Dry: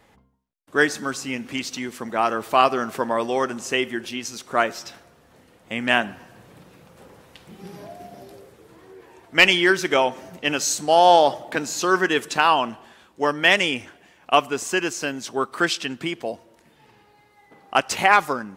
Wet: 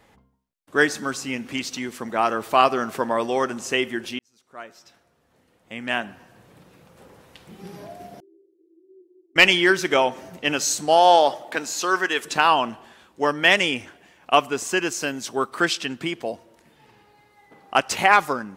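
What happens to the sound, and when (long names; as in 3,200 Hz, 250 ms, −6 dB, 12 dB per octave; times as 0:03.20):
0:04.19–0:07.65: fade in
0:08.20–0:09.36: flat-topped band-pass 350 Hz, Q 7.6
0:10.96–0:12.23: high-pass filter 260 Hz → 740 Hz 6 dB per octave
0:14.92–0:15.50: high-shelf EQ 8,500 Hz +5.5 dB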